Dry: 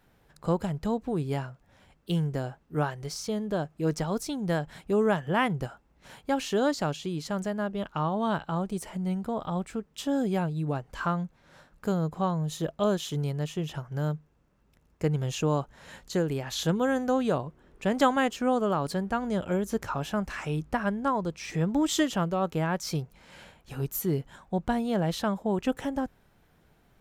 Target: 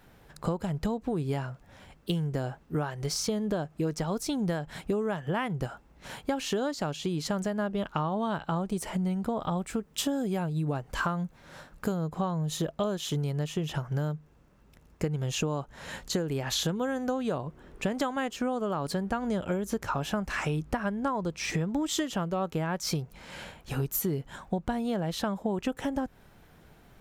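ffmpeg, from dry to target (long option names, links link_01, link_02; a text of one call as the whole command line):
ffmpeg -i in.wav -filter_complex "[0:a]acompressor=threshold=-33dB:ratio=12,asplit=3[link_01][link_02][link_03];[link_01]afade=type=out:start_time=9.56:duration=0.02[link_04];[link_02]adynamicequalizer=threshold=0.00126:dfrequency=7400:dqfactor=0.7:tfrequency=7400:tqfactor=0.7:attack=5:release=100:ratio=0.375:range=3:mode=boostabove:tftype=highshelf,afade=type=in:start_time=9.56:duration=0.02,afade=type=out:start_time=11.95:duration=0.02[link_05];[link_03]afade=type=in:start_time=11.95:duration=0.02[link_06];[link_04][link_05][link_06]amix=inputs=3:normalize=0,volume=7dB" out.wav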